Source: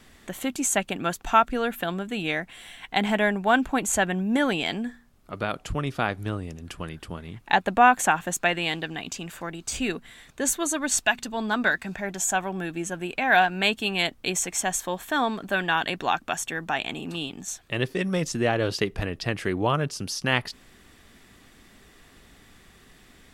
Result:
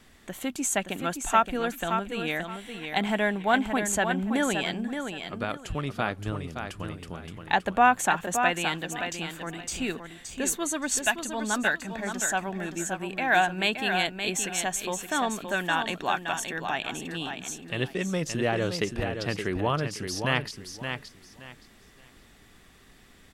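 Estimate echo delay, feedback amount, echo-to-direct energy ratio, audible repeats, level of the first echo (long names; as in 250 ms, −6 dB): 571 ms, 23%, −7.0 dB, 3, −7.0 dB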